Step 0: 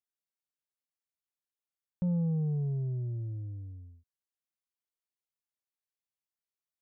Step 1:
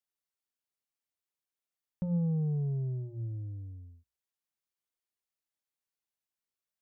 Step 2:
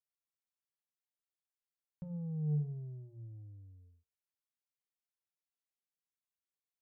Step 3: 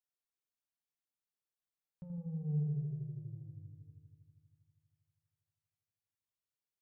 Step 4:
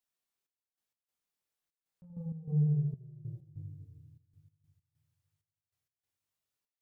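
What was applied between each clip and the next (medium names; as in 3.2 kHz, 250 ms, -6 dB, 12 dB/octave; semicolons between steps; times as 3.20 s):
hum notches 60/120/180 Hz
peaking EQ 250 Hz -3 dB; feedback comb 150 Hz, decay 0.44 s, harmonics odd, mix 80%; trim +1.5 dB
filtered feedback delay 80 ms, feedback 82%, low-pass 810 Hz, level -4.5 dB; trim -4 dB
chorus 1.1 Hz, delay 20 ms, depth 5.7 ms; trance gate "xxx..x.xxxx.x.x." 97 bpm -12 dB; trim +7.5 dB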